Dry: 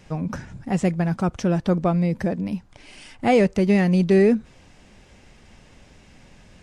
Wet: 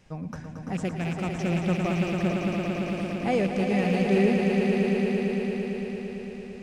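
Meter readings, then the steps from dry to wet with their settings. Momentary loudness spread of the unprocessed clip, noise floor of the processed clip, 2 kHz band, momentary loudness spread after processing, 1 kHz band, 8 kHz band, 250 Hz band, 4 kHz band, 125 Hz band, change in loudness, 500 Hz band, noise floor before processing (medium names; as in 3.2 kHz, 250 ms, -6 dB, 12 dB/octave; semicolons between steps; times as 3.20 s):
12 LU, -40 dBFS, -0.5 dB, 13 LU, -4.0 dB, no reading, -3.5 dB, +0.5 dB, -4.5 dB, -5.0 dB, -4.0 dB, -52 dBFS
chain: rattle on loud lows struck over -21 dBFS, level -20 dBFS; echo with a slow build-up 113 ms, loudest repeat 5, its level -6.5 dB; trim -8.5 dB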